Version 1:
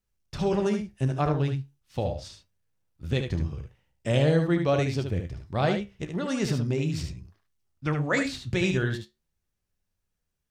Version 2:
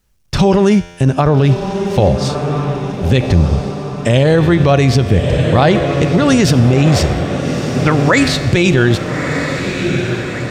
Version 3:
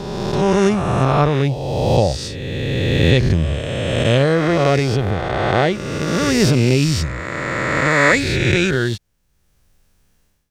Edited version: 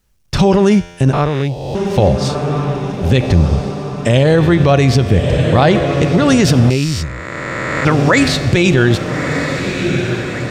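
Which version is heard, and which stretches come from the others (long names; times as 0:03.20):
2
0:01.13–0:01.75: punch in from 3
0:06.70–0:07.85: punch in from 3
not used: 1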